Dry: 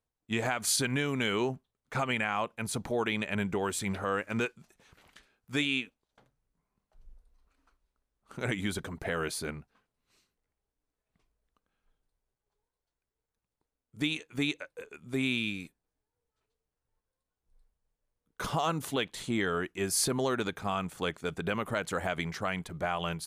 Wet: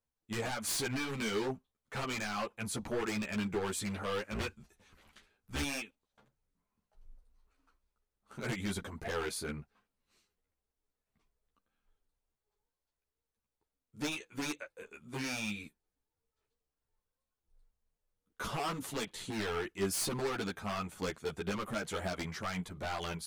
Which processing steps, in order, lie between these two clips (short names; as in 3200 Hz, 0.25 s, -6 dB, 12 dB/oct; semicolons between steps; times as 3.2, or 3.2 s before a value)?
4.31–5.63 octaver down 2 oct, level -1 dB; wavefolder -26 dBFS; ensemble effect